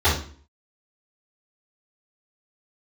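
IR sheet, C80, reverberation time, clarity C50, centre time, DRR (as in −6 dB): 11.0 dB, 0.45 s, 5.0 dB, 34 ms, −13.0 dB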